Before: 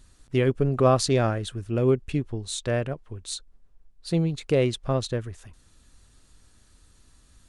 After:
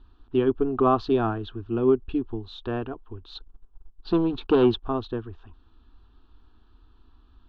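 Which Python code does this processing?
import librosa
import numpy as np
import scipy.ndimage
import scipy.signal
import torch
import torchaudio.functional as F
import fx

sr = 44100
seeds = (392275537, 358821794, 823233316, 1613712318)

y = fx.leveller(x, sr, passes=2, at=(3.35, 4.83))
y = scipy.signal.sosfilt(scipy.signal.butter(6, 3400.0, 'lowpass', fs=sr, output='sos'), y)
y = fx.fixed_phaser(y, sr, hz=560.0, stages=6)
y = y * 10.0 ** (3.5 / 20.0)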